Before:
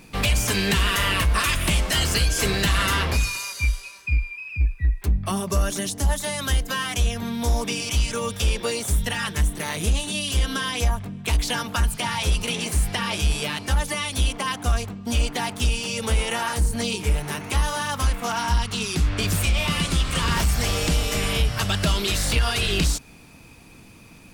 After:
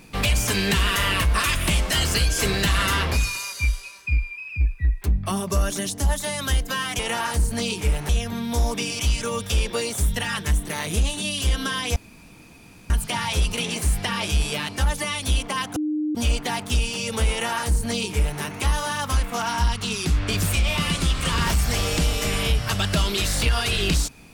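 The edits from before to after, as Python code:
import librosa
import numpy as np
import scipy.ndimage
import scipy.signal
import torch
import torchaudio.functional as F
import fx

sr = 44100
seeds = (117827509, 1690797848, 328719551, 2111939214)

y = fx.edit(x, sr, fx.room_tone_fill(start_s=10.86, length_s=0.94),
    fx.bleep(start_s=14.66, length_s=0.39, hz=304.0, db=-21.5),
    fx.duplicate(start_s=16.21, length_s=1.1, to_s=6.99), tone=tone)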